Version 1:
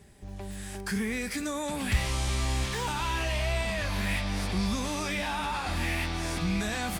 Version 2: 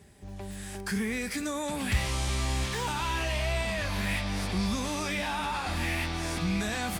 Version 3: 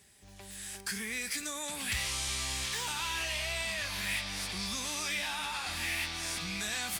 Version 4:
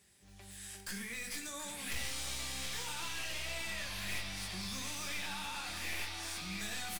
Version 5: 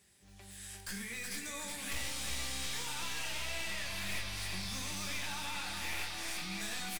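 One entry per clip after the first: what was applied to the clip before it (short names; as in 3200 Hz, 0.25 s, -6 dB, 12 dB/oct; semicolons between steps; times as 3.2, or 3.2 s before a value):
HPF 47 Hz
tilt shelf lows -8.5 dB, about 1300 Hz; gain -5 dB
one-sided fold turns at -32 dBFS; tapped delay 90/728 ms -14.5/-10.5 dB; shoebox room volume 150 m³, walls furnished, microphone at 0.91 m; gain -6.5 dB
echo 0.37 s -5.5 dB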